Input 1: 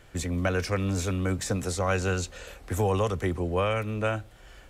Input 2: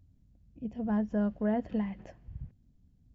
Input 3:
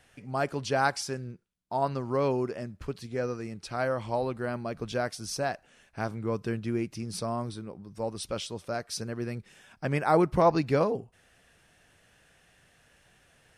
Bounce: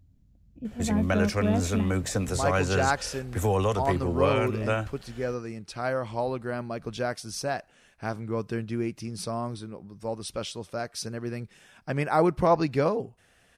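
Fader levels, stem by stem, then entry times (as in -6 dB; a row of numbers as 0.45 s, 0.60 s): +0.5 dB, +2.5 dB, +0.5 dB; 0.65 s, 0.00 s, 2.05 s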